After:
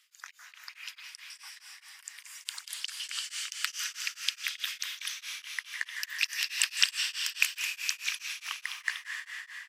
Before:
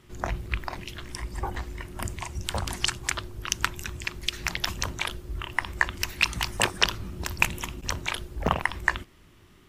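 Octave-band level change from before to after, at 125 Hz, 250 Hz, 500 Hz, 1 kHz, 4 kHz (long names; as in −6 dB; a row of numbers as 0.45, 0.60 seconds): below −40 dB, below −40 dB, below −40 dB, −17.5 dB, −1.0 dB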